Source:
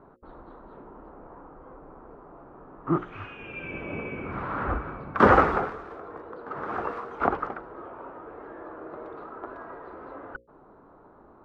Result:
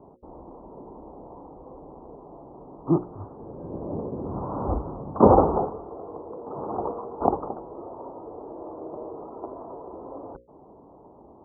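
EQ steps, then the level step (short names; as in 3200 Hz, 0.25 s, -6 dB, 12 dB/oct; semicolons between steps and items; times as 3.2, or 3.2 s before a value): HPF 43 Hz; steep low-pass 980 Hz 48 dB/oct; +4.0 dB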